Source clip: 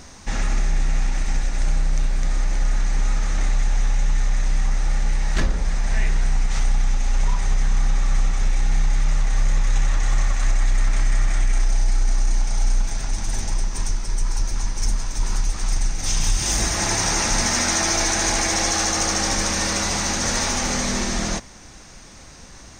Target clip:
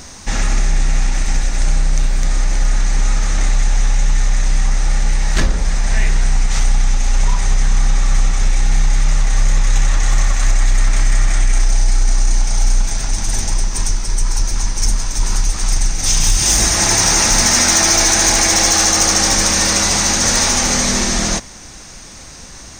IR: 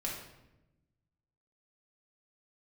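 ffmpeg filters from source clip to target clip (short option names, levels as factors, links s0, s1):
-af "highshelf=f=4400:g=6.5,asoftclip=type=hard:threshold=0.282,volume=1.88"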